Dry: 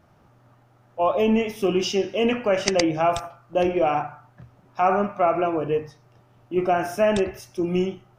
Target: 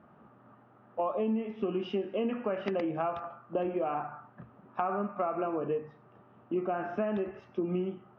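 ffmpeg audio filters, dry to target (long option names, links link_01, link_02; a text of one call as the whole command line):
ffmpeg -i in.wav -af "highpass=110,equalizer=frequency=110:width_type=q:width=4:gain=-9,equalizer=frequency=220:width_type=q:width=4:gain=8,equalizer=frequency=420:width_type=q:width=4:gain=3,equalizer=frequency=1200:width_type=q:width=4:gain=5,equalizer=frequency=2200:width_type=q:width=4:gain=-6,lowpass=frequency=2600:width=0.5412,lowpass=frequency=2600:width=1.3066,acompressor=threshold=-28dB:ratio=6,volume=-1dB" out.wav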